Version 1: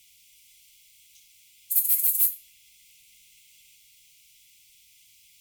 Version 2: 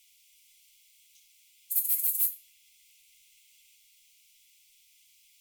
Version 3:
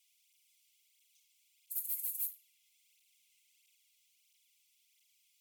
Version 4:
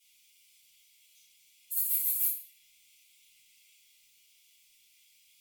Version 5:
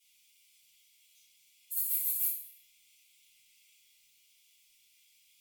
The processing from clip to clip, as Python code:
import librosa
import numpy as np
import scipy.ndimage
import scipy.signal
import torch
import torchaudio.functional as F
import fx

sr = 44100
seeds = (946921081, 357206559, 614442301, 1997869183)

y1 = fx.peak_eq(x, sr, hz=120.0, db=-12.5, octaves=2.6)
y1 = y1 * librosa.db_to_amplitude(-5.0)
y2 = fx.flanger_cancel(y1, sr, hz=1.5, depth_ms=2.7)
y2 = y2 * librosa.db_to_amplitude(-7.5)
y3 = fx.room_shoebox(y2, sr, seeds[0], volume_m3=100.0, walls='mixed', distance_m=2.6)
y4 = fx.echo_feedback(y3, sr, ms=66, feedback_pct=51, wet_db=-13.5)
y4 = y4 * librosa.db_to_amplitude(-2.5)